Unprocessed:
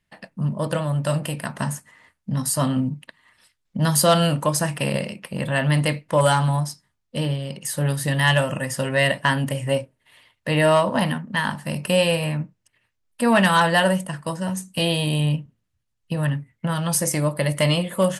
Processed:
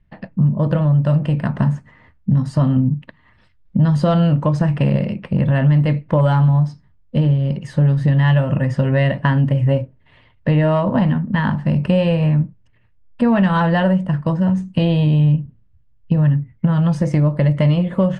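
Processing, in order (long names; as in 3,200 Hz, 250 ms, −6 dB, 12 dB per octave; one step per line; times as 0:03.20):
RIAA equalisation playback
downward compressor 3 to 1, threshold −18 dBFS, peak gain reduction 9 dB
high-frequency loss of the air 120 metres
level +4.5 dB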